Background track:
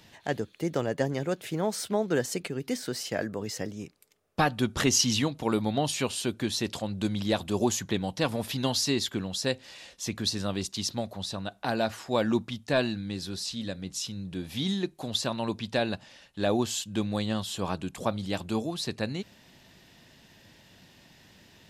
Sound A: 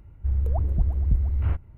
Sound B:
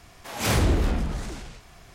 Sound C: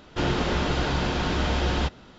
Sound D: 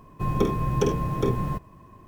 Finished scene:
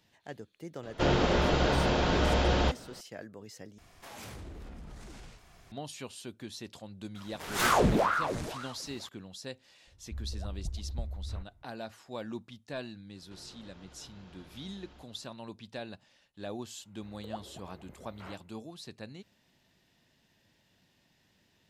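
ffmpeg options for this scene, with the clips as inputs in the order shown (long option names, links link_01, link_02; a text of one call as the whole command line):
ffmpeg -i bed.wav -i cue0.wav -i cue1.wav -i cue2.wav -filter_complex "[3:a]asplit=2[link_01][link_02];[2:a]asplit=2[link_03][link_04];[1:a]asplit=2[link_05][link_06];[0:a]volume=-13.5dB[link_07];[link_01]equalizer=frequency=570:width=1.8:gain=6[link_08];[link_03]acompressor=threshold=-35dB:ratio=6:attack=3.2:release=140:knee=1:detection=peak[link_09];[link_04]aeval=exprs='val(0)*sin(2*PI*750*n/s+750*0.9/2*sin(2*PI*2*n/s))':channel_layout=same[link_10];[link_02]acompressor=threshold=-36dB:ratio=6:attack=3.2:release=140:knee=1:detection=peak[link_11];[link_06]highpass=480[link_12];[link_07]asplit=2[link_13][link_14];[link_13]atrim=end=3.784[link_15];[link_09]atrim=end=1.94,asetpts=PTS-STARTPTS,volume=-8dB[link_16];[link_14]atrim=start=5.716[link_17];[link_08]atrim=end=2.18,asetpts=PTS-STARTPTS,volume=-2.5dB,afade=type=in:duration=0.004:curve=hsin,afade=type=out:start_time=2.176:duration=0.004:curve=hsin,adelay=830[link_18];[link_10]atrim=end=1.94,asetpts=PTS-STARTPTS,volume=-1dB,afade=type=in:duration=0.004:curve=hsin,afade=type=out:start_time=1.936:duration=0.004:curve=hsin,adelay=7150[link_19];[link_05]atrim=end=1.77,asetpts=PTS-STARTPTS,volume=-15dB,afade=type=in:duration=0.004:curve=hsin,afade=type=out:start_time=1.766:duration=0.004:curve=hsin,adelay=9870[link_20];[link_11]atrim=end=2.18,asetpts=PTS-STARTPTS,volume=-17dB,afade=type=in:duration=0.004:curve=hsin,afade=type=out:start_time=2.176:duration=0.004:curve=hsin,adelay=13150[link_21];[link_12]atrim=end=1.77,asetpts=PTS-STARTPTS,volume=-3.5dB,afade=type=in:duration=0.004:curve=hsin,afade=type=out:start_time=1.766:duration=0.004:curve=hsin,adelay=16780[link_22];[link_15][link_16]acrossfade=duration=0.004:curve1=hsin:curve2=hsin[link_23];[link_23][link_17]acrossfade=duration=0.004:curve1=hsin:curve2=hsin[link_24];[link_24][link_18][link_19][link_20][link_21][link_22]amix=inputs=6:normalize=0" out.wav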